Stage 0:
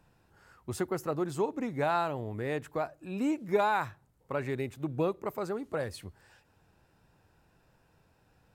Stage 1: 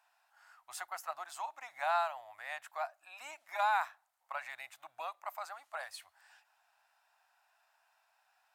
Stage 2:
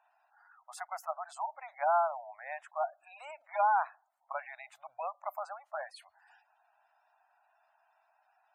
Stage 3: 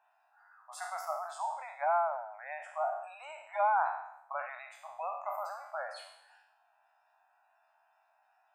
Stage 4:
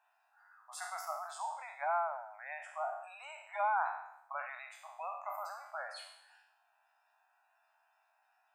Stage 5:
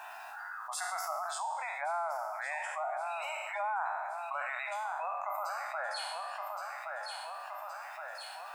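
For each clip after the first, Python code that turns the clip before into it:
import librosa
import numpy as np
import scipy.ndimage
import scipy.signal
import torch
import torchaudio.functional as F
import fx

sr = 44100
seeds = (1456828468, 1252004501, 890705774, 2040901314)

y1 = scipy.signal.sosfilt(scipy.signal.ellip(4, 1.0, 40, 690.0, 'highpass', fs=sr, output='sos'), x)
y1 = F.gain(torch.from_numpy(y1), -1.0).numpy()
y2 = fx.spec_gate(y1, sr, threshold_db=-15, keep='strong')
y2 = fx.peak_eq(y2, sr, hz=540.0, db=11.0, octaves=1.9)
y2 = F.gain(torch.from_numpy(y2), -3.0).numpy()
y3 = fx.spec_trails(y2, sr, decay_s=0.78)
y3 = F.gain(torch.from_numpy(y3), -2.0).numpy()
y4 = fx.highpass(y3, sr, hz=1400.0, slope=6)
y4 = F.gain(torch.from_numpy(y4), 1.5).numpy()
y5 = fx.echo_feedback(y4, sr, ms=1120, feedback_pct=33, wet_db=-12)
y5 = fx.env_flatten(y5, sr, amount_pct=70)
y5 = F.gain(torch.from_numpy(y5), -3.0).numpy()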